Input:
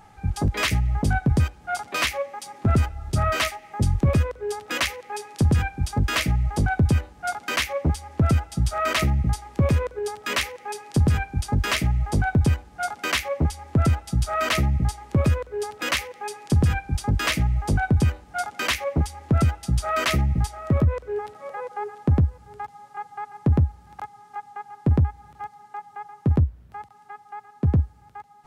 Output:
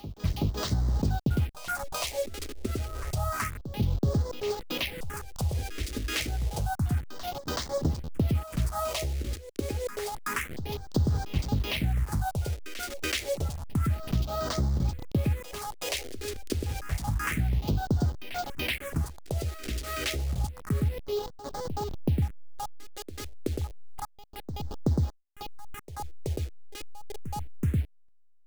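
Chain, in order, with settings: send-on-delta sampling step -28.5 dBFS; compression, threshold -24 dBFS, peak gain reduction 8.5 dB; phase shifter stages 4, 0.29 Hz, lowest notch 140–2500 Hz; on a send: reverse echo 377 ms -12.5 dB

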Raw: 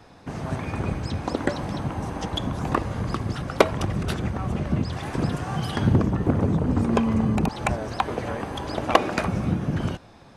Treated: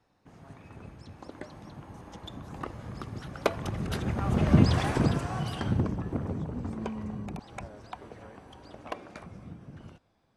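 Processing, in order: Doppler pass-by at 4.67 s, 14 m/s, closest 3.2 m; trim +5.5 dB

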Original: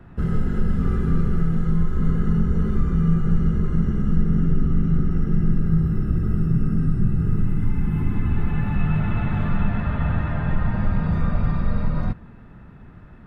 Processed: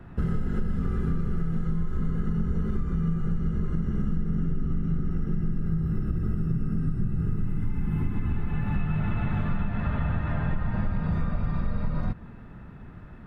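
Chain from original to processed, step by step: compression, threshold -22 dBFS, peak gain reduction 10 dB

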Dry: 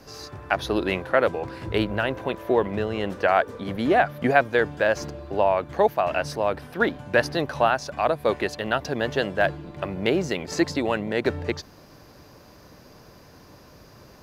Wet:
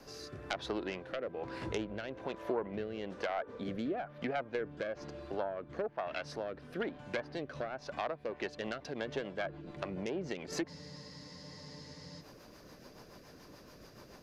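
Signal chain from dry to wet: self-modulated delay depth 0.25 ms; low-pass that closes with the level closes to 1.5 kHz, closed at -16 dBFS; peaking EQ 86 Hz -8 dB 1.4 oct; compression 2.5:1, threshold -34 dBFS, peak gain reduction 13 dB; rotary cabinet horn 1.1 Hz, later 7 Hz, at 8.02 s; spectral freeze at 10.70 s, 1.50 s; trim -2 dB

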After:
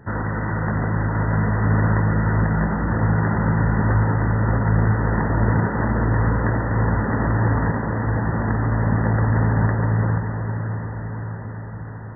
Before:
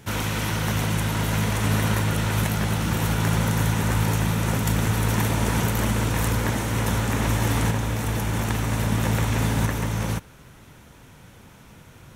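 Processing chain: brick-wall FIR low-pass 2 kHz; on a send: echo that smears into a reverb 655 ms, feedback 64%, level -8 dB; on the sum: trim +2.5 dB

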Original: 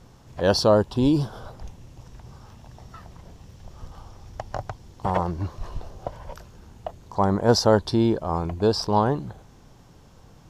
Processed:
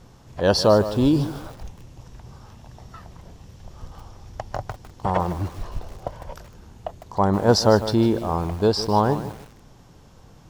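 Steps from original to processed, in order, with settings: bit-crushed delay 153 ms, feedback 35%, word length 6-bit, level -12.5 dB; trim +1.5 dB

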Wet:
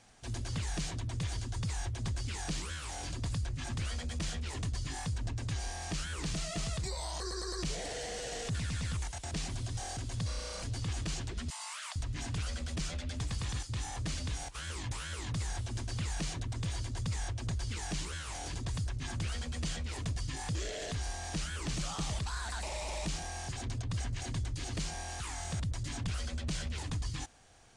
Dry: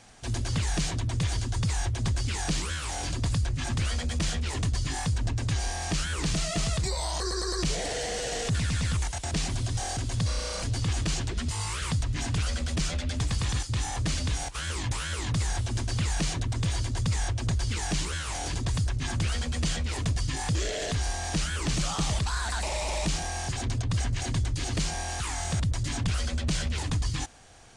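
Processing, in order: 11.50–11.96 s: steep high-pass 600 Hz 96 dB/octave; trim -8 dB

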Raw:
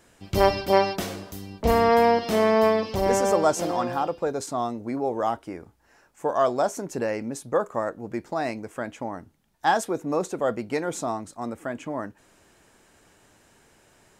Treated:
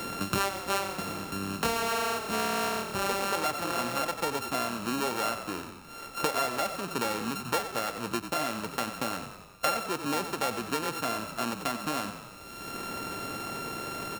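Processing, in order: sorted samples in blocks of 32 samples; frequency-shifting echo 91 ms, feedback 43%, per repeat -38 Hz, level -10.5 dB; three bands compressed up and down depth 100%; trim -7 dB

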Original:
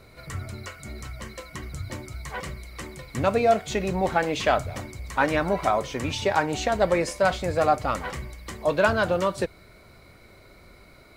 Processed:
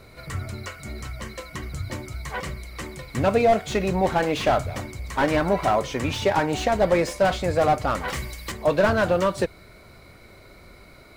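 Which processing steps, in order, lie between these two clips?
8.08–8.52 s: treble shelf 2.6 kHz +11.5 dB; slew-rate limiter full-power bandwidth 100 Hz; trim +3 dB

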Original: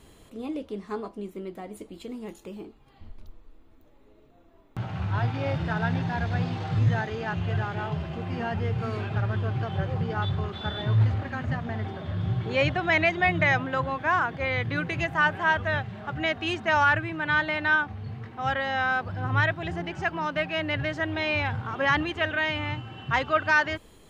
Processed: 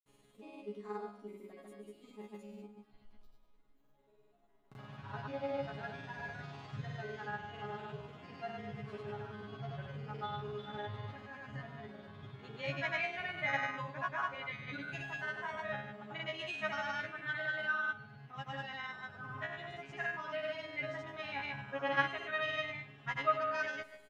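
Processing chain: bass shelf 120 Hz -6 dB; chord resonator C#3 fifth, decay 0.53 s; granulator, pitch spread up and down by 0 st; feedback delay 118 ms, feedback 42%, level -18 dB; trim +5 dB

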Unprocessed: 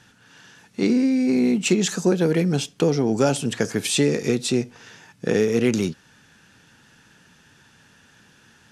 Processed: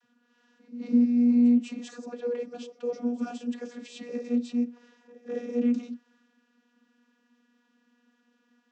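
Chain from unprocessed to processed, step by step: pre-echo 206 ms -19 dB; transient shaper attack -5 dB, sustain +3 dB; vocoder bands 32, saw 241 Hz; trim -4.5 dB

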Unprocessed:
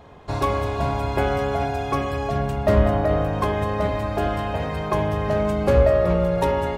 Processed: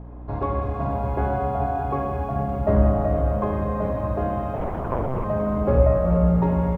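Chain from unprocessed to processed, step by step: low-pass 1.2 kHz 12 dB/octave; bass shelf 430 Hz +4 dB; hum notches 50/100/150/200/250/300/350 Hz; hum 60 Hz, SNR 14 dB; feedback delay 479 ms, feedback 15%, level -13 dB; Schroeder reverb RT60 1.5 s, combs from 31 ms, DRR 3 dB; 4.56–5.24 s: monotone LPC vocoder at 8 kHz 130 Hz; bit-crushed delay 621 ms, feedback 35%, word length 8-bit, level -12.5 dB; trim -4 dB

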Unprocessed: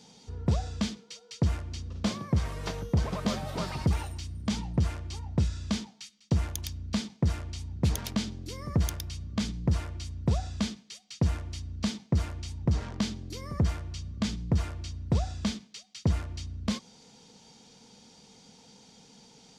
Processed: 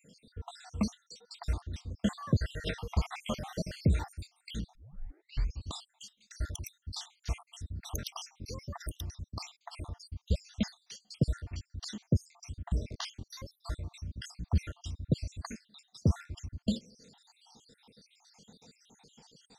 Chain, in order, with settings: random holes in the spectrogram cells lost 69%; 2.22–3.24 s: peaking EQ 2.2 kHz +9 dB 1.4 oct; 4.75 s: tape start 0.95 s

